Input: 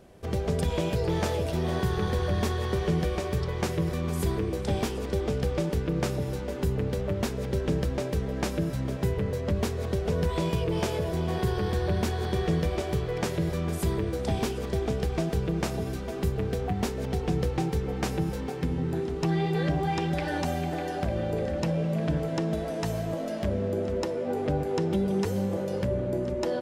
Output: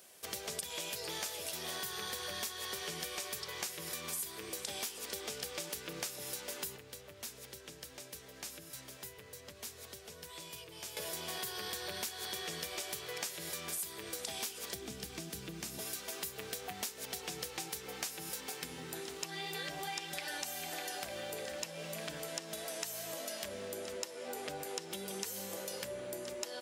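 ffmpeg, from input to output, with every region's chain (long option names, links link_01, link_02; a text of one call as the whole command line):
ffmpeg -i in.wav -filter_complex "[0:a]asettb=1/sr,asplit=3[link_01][link_02][link_03];[link_01]atrim=end=6.764[link_04];[link_02]atrim=start=6.76:end=10.97,asetpts=PTS-STARTPTS,afade=type=in:duration=0.004:curve=qsin,afade=type=out:start_time=4.206:duration=0.004:curve=qsin,equalizer=frequency=190:width_type=o:width=0.31:gain=-9,acrossover=split=93|240[link_05][link_06][link_07];[link_05]acompressor=threshold=-38dB:ratio=4[link_08];[link_06]acompressor=threshold=-39dB:ratio=4[link_09];[link_07]acompressor=threshold=-45dB:ratio=4[link_10];[link_08][link_09][link_10]amix=inputs=3:normalize=0[link_11];[link_03]atrim=start=10.966[link_12];[link_04][link_11]acrossfade=duration=0.004:curve1=hsin:curve2=qsin[link_13];[link_13][link_12]acrossfade=duration=0.004:curve1=qsin:curve2=hsin,asettb=1/sr,asplit=3[link_14][link_15][link_16];[link_14]atrim=end=14.744[link_17];[link_15]atrim=start=14.74:end=15.79,asetpts=PTS-STARTPTS,afade=type=in:duration=0.004:curve=qsin,afade=type=out:start_time=1.046:duration=0.004:curve=qsin,lowshelf=frequency=370:width_type=q:width=1.5:gain=8,acrossover=split=100|530[link_18][link_19][link_20];[link_18]acompressor=threshold=-26dB:ratio=4[link_21];[link_19]acompressor=threshold=-27dB:ratio=4[link_22];[link_20]acompressor=threshold=-45dB:ratio=4[link_23];[link_21][link_22][link_23]amix=inputs=3:normalize=0[link_24];[link_16]atrim=start=15.786[link_25];[link_17][link_24]acrossfade=duration=0.004:curve1=hsin:curve2=qsin[link_26];[link_26][link_25]acrossfade=duration=0.004:curve1=qsin:curve2=hsin,aderivative,acompressor=threshold=-48dB:ratio=6,volume=11dB" out.wav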